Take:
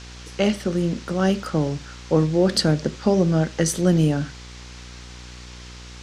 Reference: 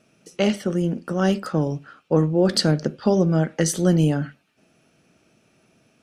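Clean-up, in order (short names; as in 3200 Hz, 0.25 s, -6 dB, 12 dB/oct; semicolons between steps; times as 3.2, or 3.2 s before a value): de-hum 60.7 Hz, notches 9; noise print and reduce 22 dB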